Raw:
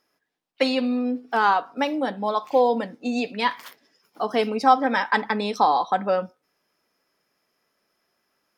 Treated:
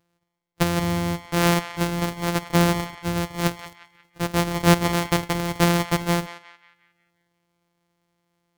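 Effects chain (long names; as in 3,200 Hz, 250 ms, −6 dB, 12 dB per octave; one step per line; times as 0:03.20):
samples sorted by size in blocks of 256 samples
feedback echo with a band-pass in the loop 179 ms, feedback 46%, band-pass 2,000 Hz, level −11 dB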